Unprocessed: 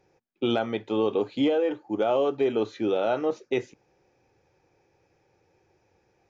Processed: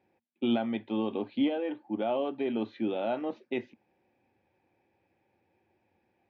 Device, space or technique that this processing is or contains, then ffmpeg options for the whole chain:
guitar cabinet: -af "highpass=94,equalizer=f=140:t=q:w=4:g=-9,equalizer=f=230:t=q:w=4:g=8,equalizer=f=450:t=q:w=4:g=-9,equalizer=f=1300:t=q:w=4:g=-8,lowpass=f=3600:w=0.5412,lowpass=f=3600:w=1.3066,volume=0.631"

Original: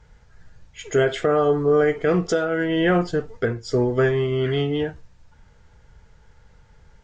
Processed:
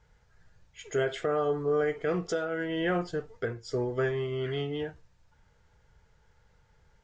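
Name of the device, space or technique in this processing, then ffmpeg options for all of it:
low shelf boost with a cut just above: -af "lowshelf=f=85:g=-12,lowshelf=f=89:g=6.5,equalizer=f=240:t=o:w=0.64:g=-4.5,volume=0.376"

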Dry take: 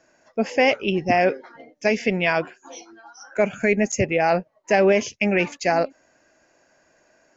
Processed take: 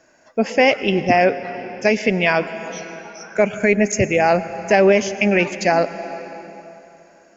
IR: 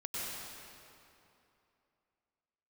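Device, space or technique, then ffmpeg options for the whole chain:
ducked reverb: -filter_complex "[0:a]asplit=3[s0][s1][s2];[1:a]atrim=start_sample=2205[s3];[s1][s3]afir=irnorm=-1:irlink=0[s4];[s2]apad=whole_len=324964[s5];[s4][s5]sidechaincompress=threshold=0.0794:ratio=4:attack=16:release=673,volume=0.335[s6];[s0][s6]amix=inputs=2:normalize=0,volume=1.41"

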